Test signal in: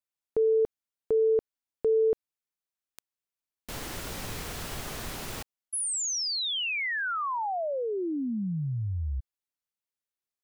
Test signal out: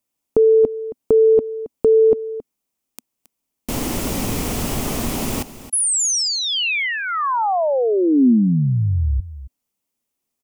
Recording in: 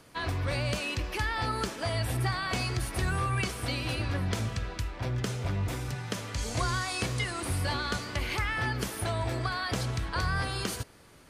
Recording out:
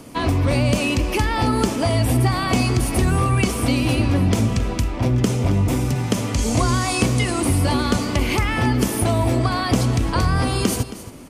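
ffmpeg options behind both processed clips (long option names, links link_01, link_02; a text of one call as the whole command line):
ffmpeg -i in.wav -filter_complex "[0:a]equalizer=frequency=250:width_type=o:width=0.67:gain=9,equalizer=frequency=1600:width_type=o:width=0.67:gain=-9,equalizer=frequency=4000:width_type=o:width=0.67:gain=-6,asplit=2[link_01][link_02];[link_02]acompressor=threshold=-33dB:ratio=6:attack=21:release=98,volume=0.5dB[link_03];[link_01][link_03]amix=inputs=2:normalize=0,aecho=1:1:271:0.178,volume=7.5dB" out.wav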